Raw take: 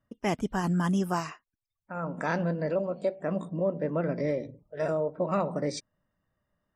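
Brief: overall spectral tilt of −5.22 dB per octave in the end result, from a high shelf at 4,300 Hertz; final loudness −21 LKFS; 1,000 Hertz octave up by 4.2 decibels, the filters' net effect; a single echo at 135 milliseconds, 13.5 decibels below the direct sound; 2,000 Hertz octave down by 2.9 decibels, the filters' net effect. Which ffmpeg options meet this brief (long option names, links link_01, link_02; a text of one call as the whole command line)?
ffmpeg -i in.wav -af "equalizer=frequency=1000:width_type=o:gain=7,equalizer=frequency=2000:width_type=o:gain=-5.5,highshelf=frequency=4300:gain=-8,aecho=1:1:135:0.211,volume=8dB" out.wav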